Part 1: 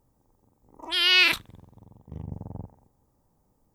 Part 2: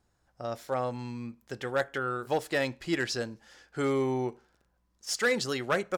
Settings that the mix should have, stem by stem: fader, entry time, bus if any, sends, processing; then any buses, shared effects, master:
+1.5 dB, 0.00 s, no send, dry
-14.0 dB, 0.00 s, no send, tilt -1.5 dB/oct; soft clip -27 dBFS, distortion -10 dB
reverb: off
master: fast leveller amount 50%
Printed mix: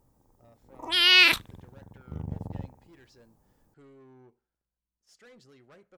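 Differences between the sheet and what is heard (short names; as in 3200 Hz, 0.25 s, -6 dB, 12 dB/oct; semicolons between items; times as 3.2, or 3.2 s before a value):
stem 2 -14.0 dB -> -23.5 dB; master: missing fast leveller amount 50%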